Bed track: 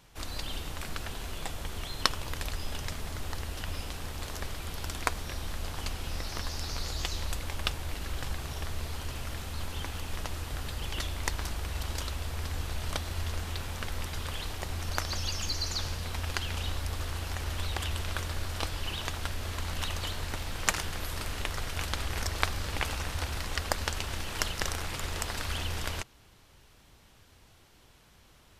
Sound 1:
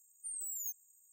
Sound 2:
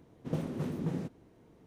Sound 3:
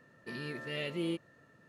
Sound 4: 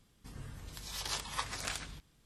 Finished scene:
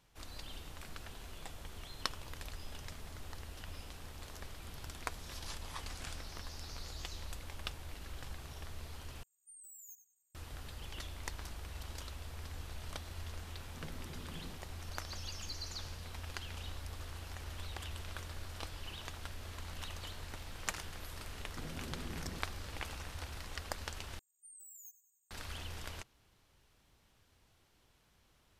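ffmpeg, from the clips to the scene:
-filter_complex "[1:a]asplit=2[a][b];[2:a]asplit=2[c][d];[0:a]volume=-11dB[e];[a]asplit=2[f][g];[g]adelay=92,lowpass=f=4.4k:p=1,volume=-5dB,asplit=2[h][i];[i]adelay=92,lowpass=f=4.4k:p=1,volume=0.45,asplit=2[j][k];[k]adelay=92,lowpass=f=4.4k:p=1,volume=0.45,asplit=2[l][m];[m]adelay=92,lowpass=f=4.4k:p=1,volume=0.45,asplit=2[n][o];[o]adelay=92,lowpass=f=4.4k:p=1,volume=0.45,asplit=2[p][q];[q]adelay=92,lowpass=f=4.4k:p=1,volume=0.45[r];[f][h][j][l][n][p][r]amix=inputs=7:normalize=0[s];[d]acompressor=threshold=-43dB:ratio=6:attack=3.2:release=140:knee=1:detection=peak[t];[b]aecho=1:1:95|190|285|380|475:0.158|0.0856|0.0462|0.025|0.0135[u];[e]asplit=3[v][w][x];[v]atrim=end=9.234[y];[s]atrim=end=1.12,asetpts=PTS-STARTPTS,volume=-13.5dB[z];[w]atrim=start=10.346:end=24.194[aa];[u]atrim=end=1.12,asetpts=PTS-STARTPTS,volume=-13.5dB[ab];[x]atrim=start=25.306[ac];[4:a]atrim=end=2.25,asetpts=PTS-STARTPTS,volume=-10dB,afade=t=in:d=0.004:c=hsin,afade=t=out:st=2.246:d=0.004:c=hsin,adelay=192717S[ad];[c]atrim=end=1.66,asetpts=PTS-STARTPTS,volume=-16.5dB,afade=t=in:d=0.004:c=hsin,afade=t=out:st=1.656:d=0.004:c=hsin,adelay=13500[ae];[t]atrim=end=1.66,asetpts=PTS-STARTPTS,volume=-1.5dB,afade=t=in:d=0.004:c=hsin,afade=t=out:st=1.656:d=0.004:c=hsin,adelay=940212S[af];[y][z]acrossfade=d=0.004:c1=hsin:c2=hsin[ag];[ag][aa]acrossfade=d=0.004:c1=hsin:c2=hsin[ah];[ah][ab]acrossfade=d=0.004:c1=hsin:c2=hsin[ai];[ai][ac]acrossfade=d=0.004:c1=hsin:c2=hsin[aj];[aj][ad][ae][af]amix=inputs=4:normalize=0"

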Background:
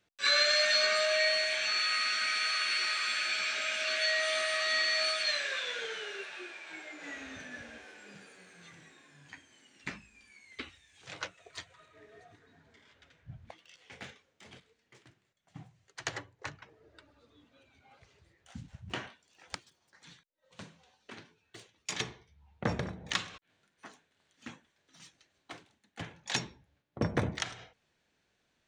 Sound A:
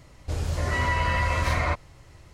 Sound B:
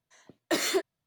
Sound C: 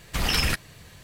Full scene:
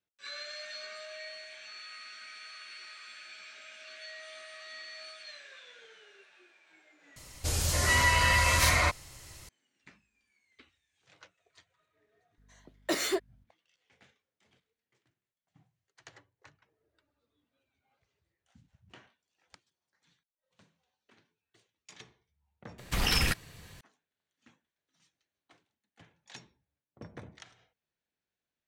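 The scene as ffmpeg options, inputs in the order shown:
-filter_complex "[0:a]volume=-16.5dB[a];[1:a]crystalizer=i=6.5:c=0[b];[2:a]aeval=exprs='val(0)+0.00112*(sin(2*PI*50*n/s)+sin(2*PI*2*50*n/s)/2+sin(2*PI*3*50*n/s)/3+sin(2*PI*4*50*n/s)/4+sin(2*PI*5*50*n/s)/5)':c=same[c];[3:a]bandreject=f=620:w=16[d];[a]asplit=2[e][f];[e]atrim=end=7.164[g];[b]atrim=end=2.33,asetpts=PTS-STARTPTS,volume=-4dB[h];[f]atrim=start=9.486[i];[c]atrim=end=1.06,asetpts=PTS-STARTPTS,volume=-3dB,afade=t=in:d=0.004:c=hsin,afade=t=out:st=1.056:d=0.004:c=hsin,adelay=12380[j];[d]atrim=end=1.03,asetpts=PTS-STARTPTS,volume=-3.5dB,afade=t=in:d=0.004:c=hsin,afade=t=out:st=1.026:d=0.004:c=hsin,adelay=22780[k];[g][h]acrossfade=d=0.004:c1=hsin:c2=hsin[l];[l][i]acrossfade=d=0.004:c1=hsin:c2=hsin[m];[m][j][k]amix=inputs=3:normalize=0"

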